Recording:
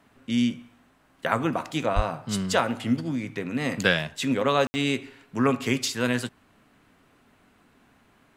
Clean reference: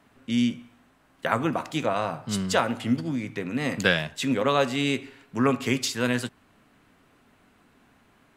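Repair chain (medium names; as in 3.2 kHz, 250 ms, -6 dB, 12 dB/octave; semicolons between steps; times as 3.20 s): 1.95–2.07 s: high-pass 140 Hz 24 dB/octave; room tone fill 4.67–4.74 s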